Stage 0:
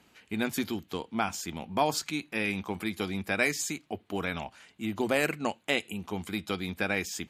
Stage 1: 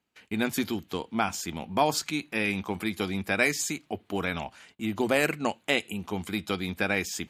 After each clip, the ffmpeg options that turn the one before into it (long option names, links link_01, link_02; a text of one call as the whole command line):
ffmpeg -i in.wav -af "agate=range=-21dB:threshold=-58dB:ratio=16:detection=peak,volume=2.5dB" out.wav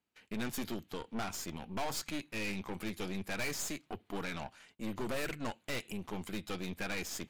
ffmpeg -i in.wav -af "aeval=exprs='(tanh(39.8*val(0)+0.8)-tanh(0.8))/39.8':channel_layout=same,volume=-2dB" out.wav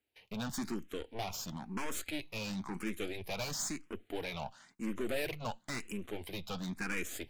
ffmpeg -i in.wav -filter_complex "[0:a]asplit=2[link_01][link_02];[link_02]afreqshift=0.98[link_03];[link_01][link_03]amix=inputs=2:normalize=1,volume=3dB" out.wav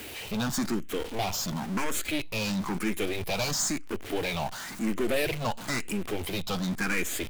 ffmpeg -i in.wav -af "aeval=exprs='val(0)+0.5*0.00891*sgn(val(0))':channel_layout=same,volume=7dB" out.wav